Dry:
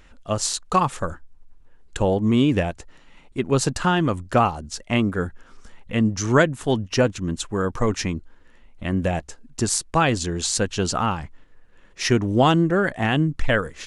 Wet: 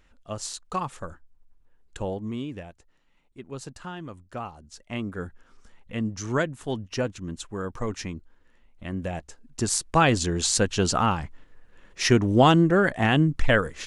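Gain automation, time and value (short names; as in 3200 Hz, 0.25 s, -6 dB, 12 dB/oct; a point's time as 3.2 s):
2.08 s -10 dB
2.58 s -17.5 dB
4.34 s -17.5 dB
5.25 s -8.5 dB
9.08 s -8.5 dB
10.04 s 0 dB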